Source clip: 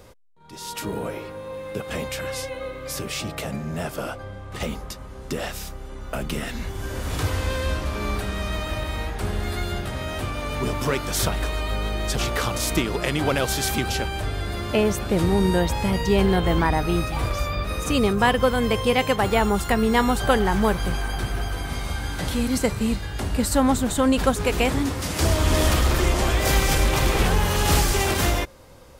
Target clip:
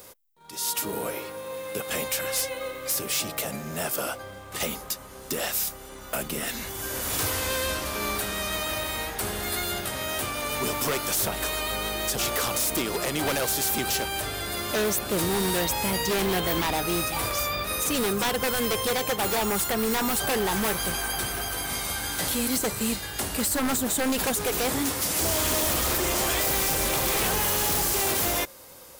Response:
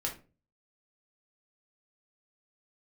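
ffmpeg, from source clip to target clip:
-filter_complex "[0:a]aemphasis=mode=production:type=bsi,acrossover=split=1000[s0][s1];[s0]acrusher=bits=4:mode=log:mix=0:aa=0.000001[s2];[s1]alimiter=limit=0.211:level=0:latency=1:release=239[s3];[s2][s3]amix=inputs=2:normalize=0,aeval=exprs='0.106*(abs(mod(val(0)/0.106+3,4)-2)-1)':c=same"

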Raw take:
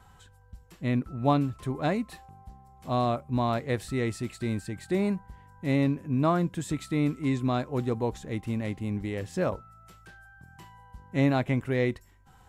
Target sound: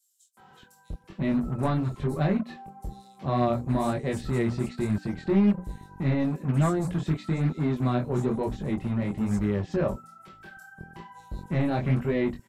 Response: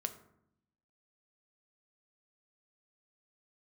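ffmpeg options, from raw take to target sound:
-filter_complex "[0:a]lowshelf=f=300:g=10,bandreject=f=60:t=h:w=6,bandreject=f=120:t=h:w=6,bandreject=f=180:t=h:w=6,bandreject=f=240:t=h:w=6,bandreject=f=300:t=h:w=6,aecho=1:1:5.2:0.39,asplit=2[s0][s1];[s1]acompressor=threshold=0.0224:ratio=6,volume=0.944[s2];[s0][s2]amix=inputs=2:normalize=0,asoftclip=type=tanh:threshold=0.211,flanger=delay=19.5:depth=6:speed=1.1,acrossover=split=190[s3][s4];[s3]acrusher=bits=5:mix=0:aa=0.5[s5];[s5][s4]amix=inputs=2:normalize=0,acrossover=split=5500[s6][s7];[s6]adelay=370[s8];[s8][s7]amix=inputs=2:normalize=0"

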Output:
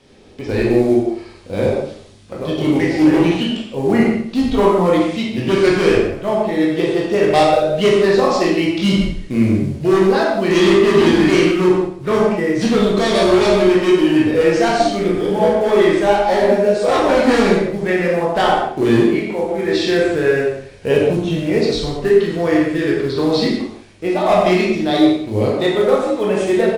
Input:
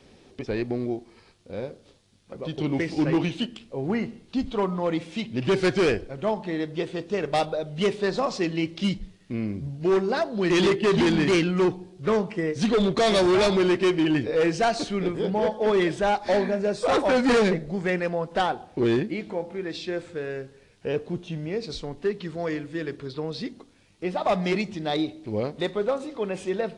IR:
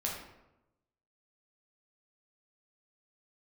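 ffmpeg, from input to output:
-filter_complex "[0:a]acrusher=bits=7:mode=log:mix=0:aa=0.000001,aecho=1:1:88|176|264|352:0.2|0.0778|0.0303|0.0118[s0];[1:a]atrim=start_sample=2205,afade=t=out:st=0.15:d=0.01,atrim=end_sample=7056,asetrate=22050,aresample=44100[s1];[s0][s1]afir=irnorm=-1:irlink=0,dynaudnorm=f=110:g=9:m=3.76,volume=0.891"

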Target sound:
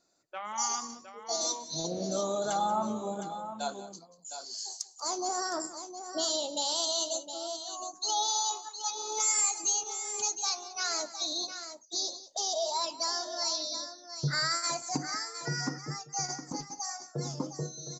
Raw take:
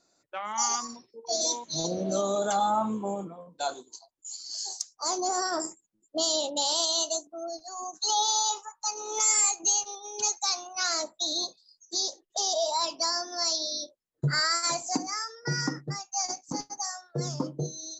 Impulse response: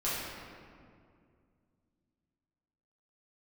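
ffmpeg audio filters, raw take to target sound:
-af "aecho=1:1:186|712:0.158|0.316,volume=0.631"

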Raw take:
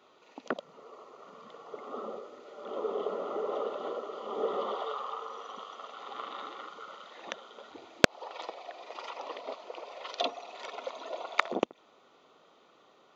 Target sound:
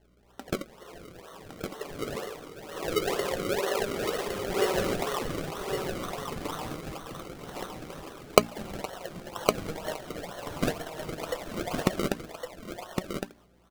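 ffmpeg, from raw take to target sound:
-filter_complex "[0:a]bandreject=f=60:t=h:w=6,bandreject=f=120:t=h:w=6,bandreject=f=180:t=h:w=6,bandreject=f=240:t=h:w=6,bandreject=f=300:t=h:w=6,asplit=2[s0][s1];[s1]aeval=exprs='(mod(5.31*val(0)+1,2)-1)/5.31':c=same,volume=0.282[s2];[s0][s2]amix=inputs=2:normalize=0,asetrate=42336,aresample=44100,acrusher=samples=35:mix=1:aa=0.000001:lfo=1:lforange=35:lforate=2.1,agate=range=0.398:threshold=0.00224:ratio=16:detection=peak,aeval=exprs='val(0)+0.000562*(sin(2*PI*60*n/s)+sin(2*PI*2*60*n/s)/2+sin(2*PI*3*60*n/s)/3+sin(2*PI*4*60*n/s)/4+sin(2*PI*5*60*n/s)/5)':c=same,flanger=delay=4.7:depth=2.3:regen=65:speed=0.24:shape=triangular,aecho=1:1:1111:0.531,volume=2.11"

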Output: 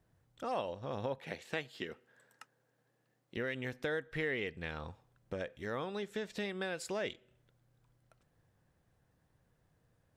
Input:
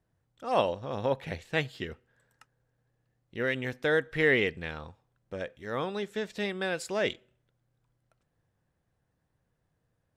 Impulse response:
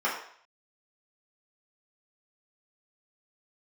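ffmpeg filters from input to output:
-filter_complex "[0:a]asettb=1/sr,asplit=3[s0][s1][s2];[s0]atrim=end=1.184[s3];[s1]atrim=start=1.18:end=3.37,asetpts=PTS-STARTPTS,afade=t=in:d=0.004:c=qsin,afade=t=out:st=2.186:d=0.004:c=qsin,highpass=210[s4];[s2]atrim=start=3.366[s5];[s3][s4]acrossfade=d=0.004:c1=hsin:c2=qsin[s6];[s6][s5]acrossfade=d=0.004:c1=qsin:c2=hsin,acompressor=threshold=0.00794:ratio=3,volume=1.5"

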